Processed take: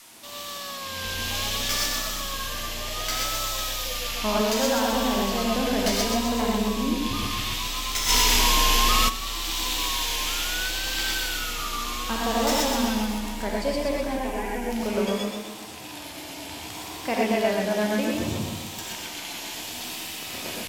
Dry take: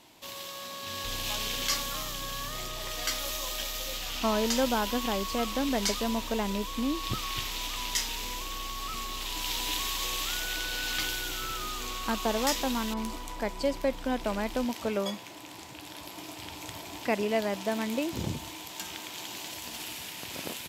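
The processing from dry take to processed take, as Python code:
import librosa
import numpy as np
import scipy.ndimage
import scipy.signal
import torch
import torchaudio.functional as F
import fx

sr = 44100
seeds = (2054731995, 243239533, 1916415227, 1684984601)

y = fx.tracing_dist(x, sr, depth_ms=0.039)
y = fx.fixed_phaser(y, sr, hz=870.0, stages=8, at=(14.07, 14.71))
y = fx.echo_feedback(y, sr, ms=131, feedback_pct=52, wet_db=-5)
y = fx.rev_gated(y, sr, seeds[0], gate_ms=140, shape='rising', drr_db=-1.5)
y = fx.vibrato(y, sr, rate_hz=0.66, depth_cents=84.0)
y = fx.low_shelf(y, sr, hz=370.0, db=-7.5, at=(4.41, 4.93))
y = fx.dmg_noise_band(y, sr, seeds[1], low_hz=830.0, high_hz=13000.0, level_db=-50.0)
y = fx.peak_eq(y, sr, hz=95.0, db=-2.5, octaves=2.2)
y = fx.env_flatten(y, sr, amount_pct=100, at=(8.08, 9.08), fade=0.02)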